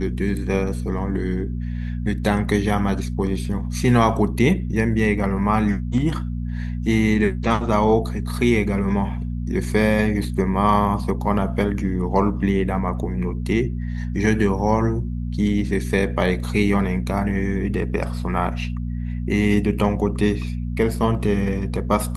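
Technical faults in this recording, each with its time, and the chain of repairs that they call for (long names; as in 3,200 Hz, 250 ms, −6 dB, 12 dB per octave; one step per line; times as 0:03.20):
mains hum 60 Hz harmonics 4 −26 dBFS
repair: hum removal 60 Hz, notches 4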